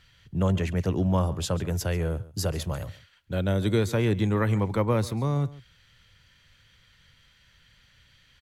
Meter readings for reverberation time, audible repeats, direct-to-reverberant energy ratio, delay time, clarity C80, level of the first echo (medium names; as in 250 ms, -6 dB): no reverb, 1, no reverb, 139 ms, no reverb, -19.0 dB